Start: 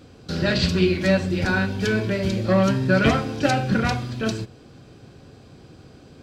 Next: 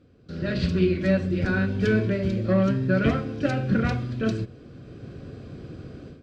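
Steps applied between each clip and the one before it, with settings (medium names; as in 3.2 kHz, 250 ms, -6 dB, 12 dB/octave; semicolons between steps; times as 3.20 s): low-pass 1.4 kHz 6 dB/octave; peaking EQ 860 Hz -14 dB 0.4 oct; level rider gain up to 16.5 dB; trim -9 dB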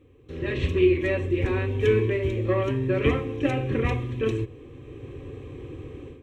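static phaser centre 970 Hz, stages 8; trim +5 dB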